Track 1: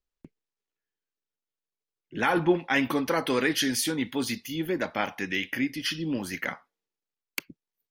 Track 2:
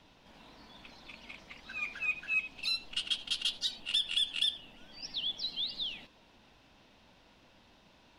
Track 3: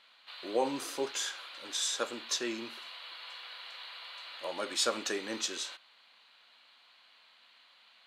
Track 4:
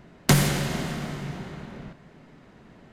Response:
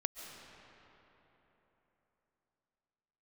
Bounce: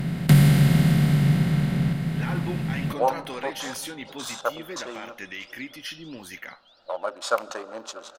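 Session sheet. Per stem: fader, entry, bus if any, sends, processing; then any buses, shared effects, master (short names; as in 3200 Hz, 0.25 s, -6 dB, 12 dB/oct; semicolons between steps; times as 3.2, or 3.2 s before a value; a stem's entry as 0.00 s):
-3.5 dB, 0.00 s, no send, no echo send, bell 190 Hz -8 dB 3 oct; limiter -20.5 dBFS, peak gain reduction 9 dB; notch 4700 Hz
-12.0 dB, 0.45 s, no send, echo send -4 dB, compressor, threshold -41 dBFS, peak gain reduction 14 dB
-5.0 dB, 2.45 s, send -13.5 dB, echo send -18.5 dB, Wiener smoothing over 41 samples; gate -55 dBFS, range -7 dB; band shelf 880 Hz +15.5 dB
-7.0 dB, 0.00 s, send -10.5 dB, no echo send, per-bin compression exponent 0.4; fifteen-band EQ 160 Hz +12 dB, 400 Hz -4 dB, 1000 Hz -7 dB, 6300 Hz -11 dB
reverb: on, RT60 3.8 s, pre-delay 0.1 s
echo: feedback echo 0.636 s, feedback 29%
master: dry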